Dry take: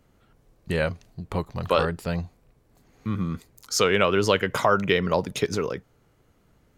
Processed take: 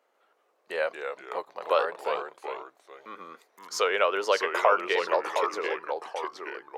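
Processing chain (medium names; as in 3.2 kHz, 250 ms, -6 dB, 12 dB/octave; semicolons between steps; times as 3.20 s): ever faster or slower copies 145 ms, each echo -2 st, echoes 2, each echo -6 dB; high-pass 490 Hz 24 dB/octave; treble shelf 3.1 kHz -11 dB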